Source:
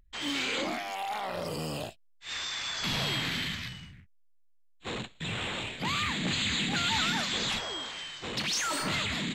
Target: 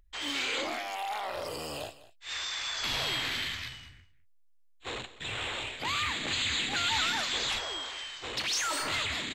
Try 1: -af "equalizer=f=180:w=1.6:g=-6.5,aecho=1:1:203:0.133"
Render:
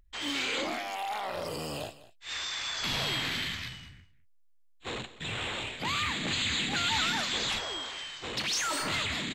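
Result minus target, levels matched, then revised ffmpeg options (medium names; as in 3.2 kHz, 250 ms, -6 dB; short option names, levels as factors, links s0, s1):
250 Hz band +4.5 dB
-af "equalizer=f=180:w=1.6:g=-17,aecho=1:1:203:0.133"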